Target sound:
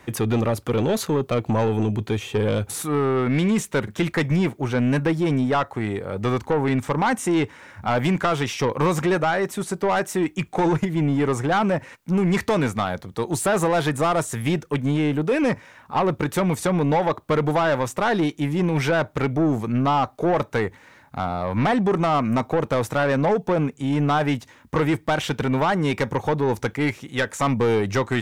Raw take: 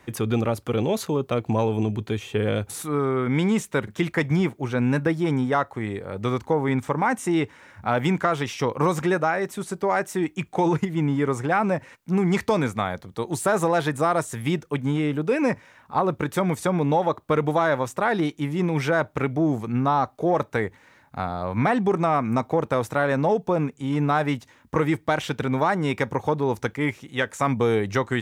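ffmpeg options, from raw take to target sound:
-af "aeval=exprs='(tanh(8.91*val(0)+0.05)-tanh(0.05))/8.91':c=same,volume=1.68"

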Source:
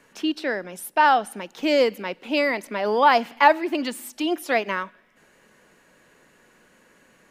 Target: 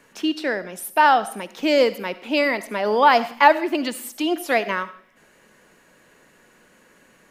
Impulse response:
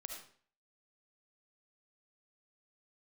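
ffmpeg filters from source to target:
-filter_complex "[0:a]asplit=2[s0][s1];[1:a]atrim=start_sample=2205,highshelf=f=7900:g=9.5[s2];[s1][s2]afir=irnorm=-1:irlink=0,volume=0.447[s3];[s0][s3]amix=inputs=2:normalize=0"

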